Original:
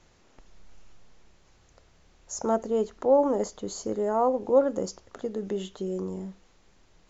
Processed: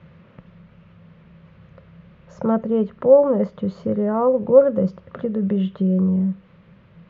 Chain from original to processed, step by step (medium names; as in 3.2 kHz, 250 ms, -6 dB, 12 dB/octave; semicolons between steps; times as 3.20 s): resonant low shelf 240 Hz +10 dB, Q 1.5; in parallel at -0.5 dB: compression, threshold -37 dBFS, peak gain reduction 19.5 dB; on the sum: cabinet simulation 110–2900 Hz, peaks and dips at 170 Hz +6 dB, 290 Hz -4 dB, 540 Hz +9 dB, 770 Hz -8 dB, 1.2 kHz +3 dB; trim +2.5 dB